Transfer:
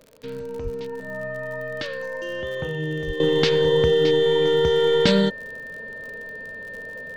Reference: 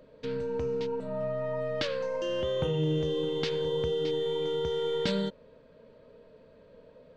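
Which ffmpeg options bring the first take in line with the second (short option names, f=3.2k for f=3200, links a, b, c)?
-filter_complex "[0:a]adeclick=t=4,bandreject=f=1.8k:w=30,asplit=3[a][b][c];[a]afade=t=out:st=0.63:d=0.02[d];[b]highpass=f=140:w=0.5412,highpass=f=140:w=1.3066,afade=t=in:st=0.63:d=0.02,afade=t=out:st=0.75:d=0.02[e];[c]afade=t=in:st=0.75:d=0.02[f];[d][e][f]amix=inputs=3:normalize=0,asplit=3[g][h][i];[g]afade=t=out:st=3.06:d=0.02[j];[h]highpass=f=140:w=0.5412,highpass=f=140:w=1.3066,afade=t=in:st=3.06:d=0.02,afade=t=out:st=3.18:d=0.02[k];[i]afade=t=in:st=3.18:d=0.02[l];[j][k][l]amix=inputs=3:normalize=0,asetnsamples=n=441:p=0,asendcmd='3.2 volume volume -11.5dB',volume=0dB"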